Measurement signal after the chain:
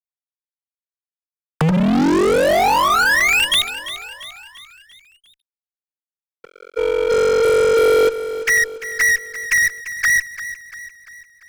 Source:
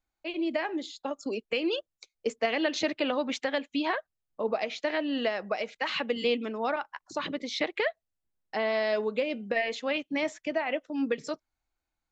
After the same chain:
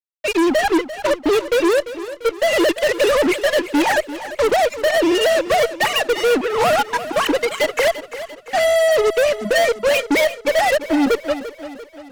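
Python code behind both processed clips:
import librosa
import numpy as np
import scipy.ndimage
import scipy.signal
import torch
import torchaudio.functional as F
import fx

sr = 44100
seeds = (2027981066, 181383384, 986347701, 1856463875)

p1 = fx.sine_speech(x, sr)
p2 = fx.rider(p1, sr, range_db=4, speed_s=0.5)
p3 = fx.fuzz(p2, sr, gain_db=38.0, gate_db=-44.0)
y = p3 + fx.echo_feedback(p3, sr, ms=344, feedback_pct=51, wet_db=-13.5, dry=0)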